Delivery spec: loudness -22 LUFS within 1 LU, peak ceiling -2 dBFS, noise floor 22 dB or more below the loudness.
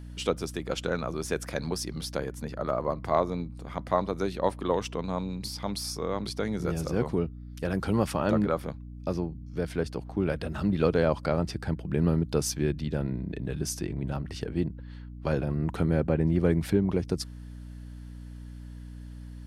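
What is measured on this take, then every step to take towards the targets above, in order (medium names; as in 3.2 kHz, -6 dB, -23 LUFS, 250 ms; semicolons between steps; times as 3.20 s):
hum 60 Hz; highest harmonic 300 Hz; hum level -40 dBFS; loudness -30.0 LUFS; peak level -10.5 dBFS; loudness target -22.0 LUFS
-> hum notches 60/120/180/240/300 Hz; trim +8 dB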